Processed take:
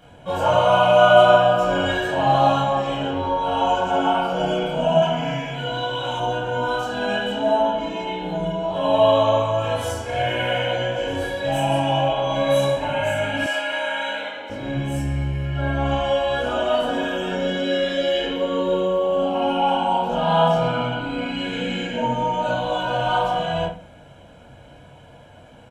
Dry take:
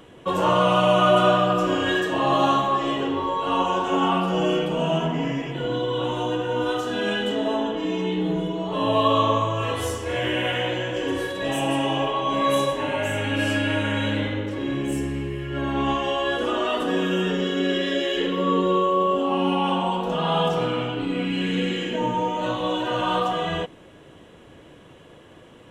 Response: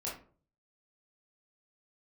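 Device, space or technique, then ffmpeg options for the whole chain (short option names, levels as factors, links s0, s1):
microphone above a desk: -filter_complex "[0:a]aecho=1:1:1.3:0.69[s0];[1:a]atrim=start_sample=2205[s1];[s0][s1]afir=irnorm=-1:irlink=0,asettb=1/sr,asplit=3[s2][s3][s4];[s2]atrim=end=5.024[s5];[s3]atrim=start=5.02:end=6.2,asetpts=PTS-STARTPTS,afade=t=in:d=0.004:c=qsin,afade=t=out:st=1.176:d=0.004:c=qsin,tiltshelf=f=860:g=-5.5[s6];[s4]atrim=start=6.196[s7];[s5][s6]acrossfade=d=0.004:c1=hsin:c2=qsin[s8];[s8][s7]acrossfade=d=0.004:c1=qsin:c2=hsin,asettb=1/sr,asplit=3[s9][s10][s11];[s9]atrim=end=13.464[s12];[s10]atrim=start=13.46:end=14.5,asetpts=PTS-STARTPTS,afade=t=in:d=0.004:c=qsin,afade=t=out:st=1.036:d=0.004:c=qsin,highpass=580[s13];[s11]atrim=start=14.496[s14];[s12][s13]acrossfade=d=0.004:c1=hsin:c2=qsin[s15];[s15][s14]acrossfade=d=0.004:c1=qsin:c2=hsin,volume=0.891"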